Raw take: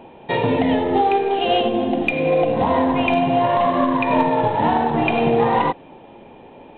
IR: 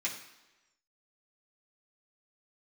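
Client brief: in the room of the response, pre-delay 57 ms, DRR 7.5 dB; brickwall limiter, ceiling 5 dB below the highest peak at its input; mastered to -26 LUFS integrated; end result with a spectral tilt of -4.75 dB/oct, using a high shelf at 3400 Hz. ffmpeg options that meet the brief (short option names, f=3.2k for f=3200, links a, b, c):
-filter_complex "[0:a]highshelf=f=3.4k:g=-4.5,alimiter=limit=-12.5dB:level=0:latency=1,asplit=2[a][b];[1:a]atrim=start_sample=2205,adelay=57[c];[b][c]afir=irnorm=-1:irlink=0,volume=-12dB[d];[a][d]amix=inputs=2:normalize=0,volume=-5dB"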